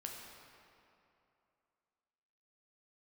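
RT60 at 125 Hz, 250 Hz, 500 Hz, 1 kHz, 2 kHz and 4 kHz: 2.6 s, 2.7 s, 2.8 s, 2.8 s, 2.3 s, 1.8 s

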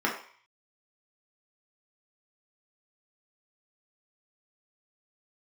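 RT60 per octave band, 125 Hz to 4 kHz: 0.60 s, 0.35 s, 0.45 s, 0.55 s, 0.60 s, 0.55 s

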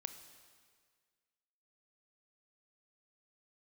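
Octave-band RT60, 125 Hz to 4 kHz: 1.8 s, 1.7 s, 1.8 s, 1.7 s, 1.8 s, 1.7 s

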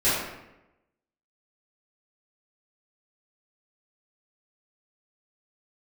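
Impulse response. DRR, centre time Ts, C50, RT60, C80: -14.5 dB, 74 ms, 0.0 dB, 0.95 s, 3.0 dB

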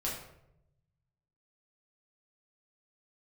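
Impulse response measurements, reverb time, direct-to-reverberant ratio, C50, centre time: 0.80 s, -5.5 dB, 3.5 dB, 44 ms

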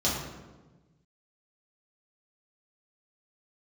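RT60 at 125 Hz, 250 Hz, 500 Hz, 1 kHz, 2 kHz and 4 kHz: 1.9 s, 1.6 s, 1.3 s, 1.1 s, 0.90 s, 0.75 s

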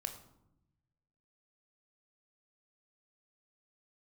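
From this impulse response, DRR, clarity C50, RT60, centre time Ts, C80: 5.5 dB, 10.0 dB, 0.85 s, 15 ms, 12.5 dB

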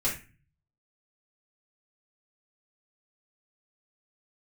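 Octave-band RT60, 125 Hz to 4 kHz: 0.85 s, 0.55 s, 0.35 s, 0.35 s, 0.40 s, 0.30 s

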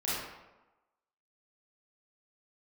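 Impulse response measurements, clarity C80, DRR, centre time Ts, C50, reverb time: 1.0 dB, -10.0 dB, 90 ms, -3.0 dB, 1.1 s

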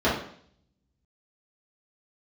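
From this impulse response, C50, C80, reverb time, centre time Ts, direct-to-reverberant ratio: 4.0 dB, 9.0 dB, 0.60 s, 40 ms, -10.0 dB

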